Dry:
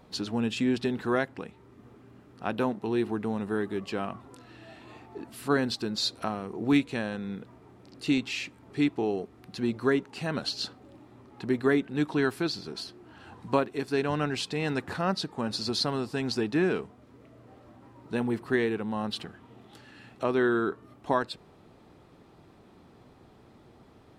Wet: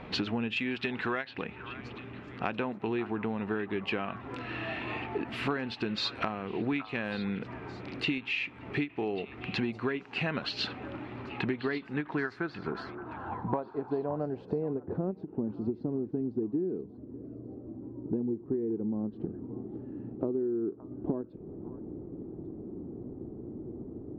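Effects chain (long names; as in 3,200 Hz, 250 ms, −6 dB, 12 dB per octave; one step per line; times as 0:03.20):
low-pass filter sweep 2,500 Hz → 340 Hz, 0:11.60–0:15.30
in parallel at +1.5 dB: speech leveller within 4 dB 0.5 s
0:00.56–0:01.34: on the sum: tilt shelving filter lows −4.5 dB, about 1,100 Hz
downward compressor 12 to 1, threshold −30 dBFS, peak gain reduction 21.5 dB
on a send: echo through a band-pass that steps 571 ms, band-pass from 1,100 Hz, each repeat 1.4 octaves, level −10 dB
on the sum: every ending faded ahead of time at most 340 dB per second
level +1.5 dB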